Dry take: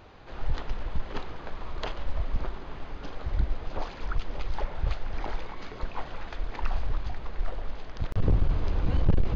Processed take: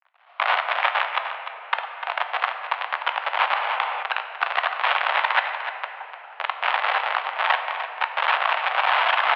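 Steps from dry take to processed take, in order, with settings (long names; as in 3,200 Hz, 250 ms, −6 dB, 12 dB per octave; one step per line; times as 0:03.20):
rippled gain that drifts along the octave scale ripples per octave 0.92, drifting −0.47 Hz, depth 9 dB
camcorder AGC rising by 18 dB per second
noise gate −23 dBFS, range −23 dB
tilt shelving filter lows +8.5 dB, about 1,100 Hz
bit reduction 10 bits
wrap-around overflow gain 19.5 dB
single-tap delay 299 ms −10.5 dB
convolution reverb RT60 2.8 s, pre-delay 5 ms, DRR 6 dB
single-sideband voice off tune +180 Hz 590–3,100 Hz
0:03.50–0:04.03: envelope flattener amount 50%
level +9 dB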